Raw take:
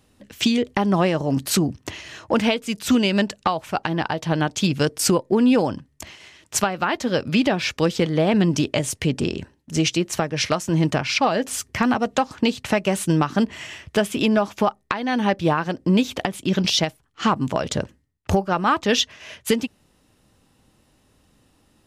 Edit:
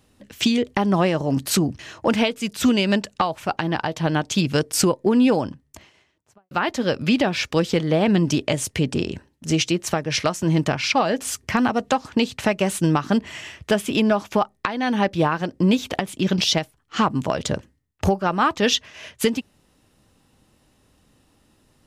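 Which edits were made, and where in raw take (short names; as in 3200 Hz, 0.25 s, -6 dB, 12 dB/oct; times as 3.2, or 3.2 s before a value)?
1.79–2.05 cut
5.5–6.77 studio fade out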